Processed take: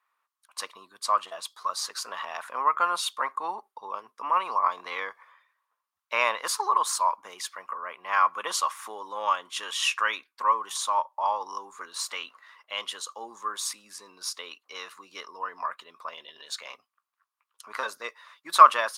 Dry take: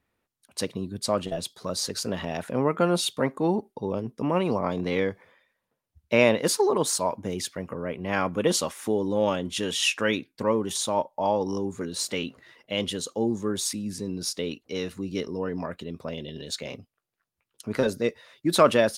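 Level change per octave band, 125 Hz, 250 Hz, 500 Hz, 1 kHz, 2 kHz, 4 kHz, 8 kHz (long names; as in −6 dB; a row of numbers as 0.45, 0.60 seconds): below −35 dB, −26.0 dB, −13.0 dB, +7.5 dB, +0.5 dB, −2.0 dB, −3.0 dB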